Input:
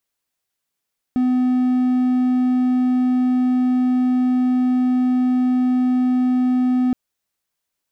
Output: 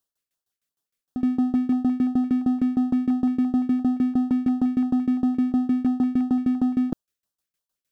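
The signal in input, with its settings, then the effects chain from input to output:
tone triangle 252 Hz -12.5 dBFS 5.77 s
tremolo saw down 6.5 Hz, depth 95%; LFO notch square 2.9 Hz 870–2200 Hz

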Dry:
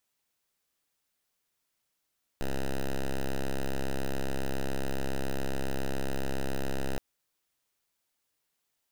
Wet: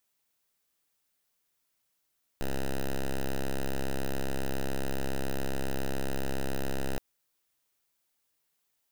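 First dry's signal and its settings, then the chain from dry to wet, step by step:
pulse 67.2 Hz, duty 6% -29 dBFS 4.57 s
treble shelf 11 kHz +5 dB

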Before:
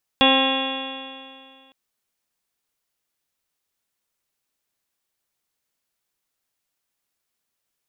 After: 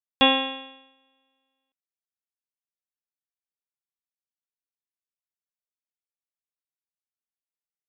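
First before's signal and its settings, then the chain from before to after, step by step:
stretched partials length 1.51 s, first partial 265 Hz, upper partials -1/-1/-3.5/-14/-11/-10.5/-15/-8/-1.5/-15.5/2.5/-16 dB, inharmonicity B 0.0009, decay 2.23 s, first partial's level -18.5 dB
upward expansion 2.5:1, over -34 dBFS

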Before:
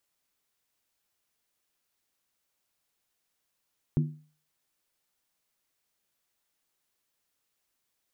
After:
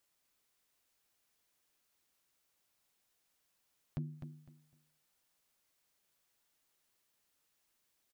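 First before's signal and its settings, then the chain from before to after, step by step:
skin hit, lowest mode 152 Hz, decay 0.41 s, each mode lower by 7 dB, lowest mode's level -19 dB
compression 10:1, threshold -34 dBFS; overload inside the chain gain 31 dB; on a send: feedback delay 253 ms, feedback 24%, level -7.5 dB

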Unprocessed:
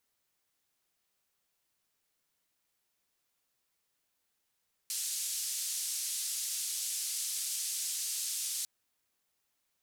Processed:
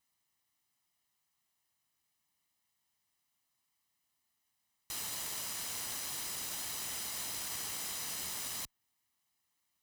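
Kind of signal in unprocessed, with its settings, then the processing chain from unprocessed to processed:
noise band 5.1–10 kHz, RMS -36 dBFS 3.75 s
comb filter that takes the minimum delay 1 ms; high-pass 53 Hz; dynamic bell 7.7 kHz, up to -4 dB, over -52 dBFS, Q 0.73

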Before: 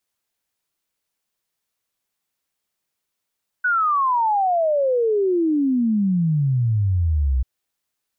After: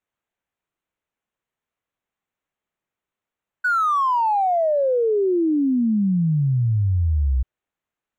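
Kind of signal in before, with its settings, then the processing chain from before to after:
log sweep 1.5 kHz -> 61 Hz 3.79 s -16 dBFS
local Wiener filter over 9 samples

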